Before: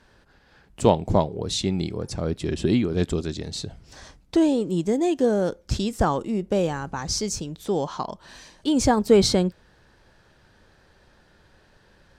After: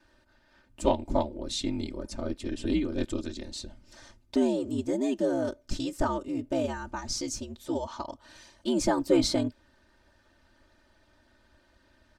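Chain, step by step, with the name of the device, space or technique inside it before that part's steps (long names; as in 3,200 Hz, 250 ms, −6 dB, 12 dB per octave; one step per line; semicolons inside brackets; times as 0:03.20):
ring-modulated robot voice (ring modulation 69 Hz; comb filter 3.3 ms, depth 92%)
level −6 dB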